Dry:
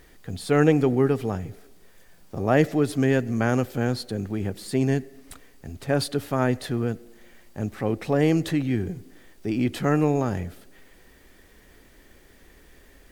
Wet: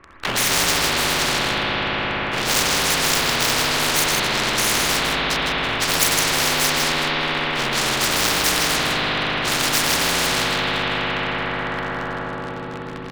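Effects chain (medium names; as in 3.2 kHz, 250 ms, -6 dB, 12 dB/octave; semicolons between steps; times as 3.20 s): frequency axis rescaled in octaves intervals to 75%; low-pass 2.2 kHz 24 dB/octave; peaking EQ 1.7 kHz +11 dB 1.9 oct; hum notches 50/100/150 Hz; waveshaping leveller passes 5; on a send: delay 158 ms -6 dB; on the sum: spring tank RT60 3.7 s, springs 59 ms, chirp 60 ms, DRR -3.5 dB; spectrum-flattening compressor 10:1; trim -9.5 dB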